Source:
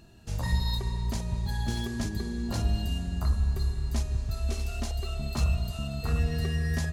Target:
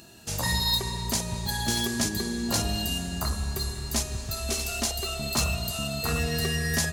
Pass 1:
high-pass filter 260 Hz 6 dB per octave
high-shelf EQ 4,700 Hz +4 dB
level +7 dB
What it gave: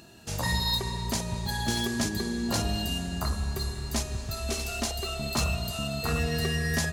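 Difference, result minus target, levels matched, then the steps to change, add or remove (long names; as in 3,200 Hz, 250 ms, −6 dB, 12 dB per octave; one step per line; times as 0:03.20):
8,000 Hz band −3.0 dB
change: high-shelf EQ 4,700 Hz +11 dB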